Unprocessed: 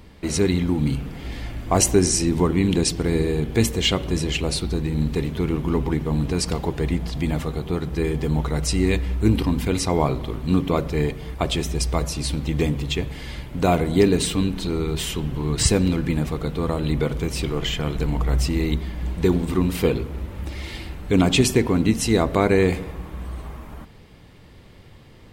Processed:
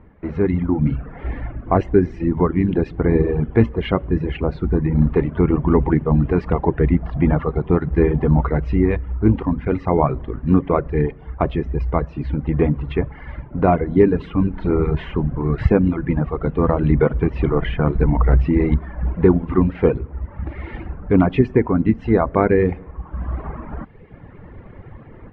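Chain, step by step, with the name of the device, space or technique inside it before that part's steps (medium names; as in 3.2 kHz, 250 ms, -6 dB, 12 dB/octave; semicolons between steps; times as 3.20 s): reverb removal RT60 1.1 s; action camera in a waterproof case (low-pass 1.8 kHz 24 dB/octave; level rider gain up to 12 dB; trim -1 dB; AAC 96 kbps 24 kHz)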